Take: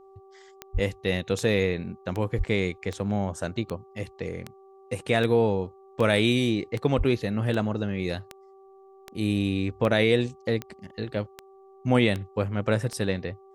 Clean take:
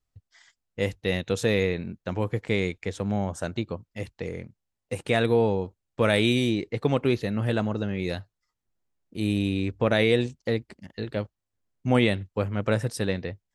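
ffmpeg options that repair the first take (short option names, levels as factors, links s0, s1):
-filter_complex "[0:a]adeclick=t=4,bandreject=f=386.9:t=h:w=4,bandreject=f=773.8:t=h:w=4,bandreject=f=1160.7:t=h:w=4,asplit=3[s0][s1][s2];[s0]afade=t=out:st=0.73:d=0.02[s3];[s1]highpass=f=140:w=0.5412,highpass=f=140:w=1.3066,afade=t=in:st=0.73:d=0.02,afade=t=out:st=0.85:d=0.02[s4];[s2]afade=t=in:st=0.85:d=0.02[s5];[s3][s4][s5]amix=inputs=3:normalize=0,asplit=3[s6][s7][s8];[s6]afade=t=out:st=2.37:d=0.02[s9];[s7]highpass=f=140:w=0.5412,highpass=f=140:w=1.3066,afade=t=in:st=2.37:d=0.02,afade=t=out:st=2.49:d=0.02[s10];[s8]afade=t=in:st=2.49:d=0.02[s11];[s9][s10][s11]amix=inputs=3:normalize=0,asplit=3[s12][s13][s14];[s12]afade=t=out:st=6.97:d=0.02[s15];[s13]highpass=f=140:w=0.5412,highpass=f=140:w=1.3066,afade=t=in:st=6.97:d=0.02,afade=t=out:st=7.09:d=0.02[s16];[s14]afade=t=in:st=7.09:d=0.02[s17];[s15][s16][s17]amix=inputs=3:normalize=0"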